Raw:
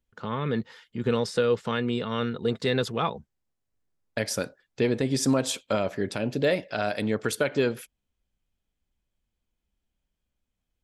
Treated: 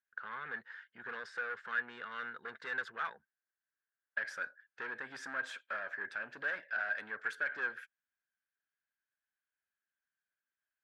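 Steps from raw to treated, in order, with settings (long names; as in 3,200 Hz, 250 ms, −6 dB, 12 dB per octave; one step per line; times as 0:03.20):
soft clipping −25 dBFS, distortion −9 dB
resonant band-pass 1,600 Hz, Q 10
level +10 dB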